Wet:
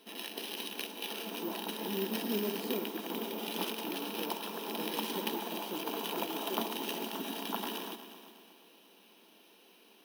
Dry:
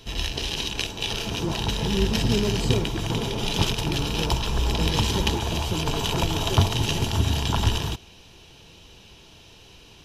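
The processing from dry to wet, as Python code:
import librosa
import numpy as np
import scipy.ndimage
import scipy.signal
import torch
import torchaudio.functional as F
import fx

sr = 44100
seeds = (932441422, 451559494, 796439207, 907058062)

y = fx.brickwall_highpass(x, sr, low_hz=190.0)
y = (np.kron(scipy.signal.resample_poly(y, 1, 3), np.eye(3)[0]) * 3)[:len(y)]
y = fx.lowpass(y, sr, hz=2500.0, slope=6)
y = fx.echo_heads(y, sr, ms=120, heads='all three', feedback_pct=47, wet_db=-17.5)
y = y * 10.0 ** (-8.5 / 20.0)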